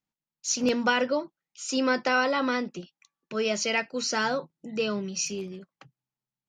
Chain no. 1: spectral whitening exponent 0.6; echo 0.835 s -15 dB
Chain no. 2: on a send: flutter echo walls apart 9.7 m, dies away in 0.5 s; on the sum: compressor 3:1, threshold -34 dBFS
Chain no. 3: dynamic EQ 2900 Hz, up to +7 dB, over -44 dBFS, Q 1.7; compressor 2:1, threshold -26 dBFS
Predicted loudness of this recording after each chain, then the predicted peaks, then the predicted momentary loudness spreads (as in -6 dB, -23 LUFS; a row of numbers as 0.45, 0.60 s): -27.5, -35.0, -29.0 LUFS; -11.0, -21.0, -13.0 dBFS; 15, 8, 11 LU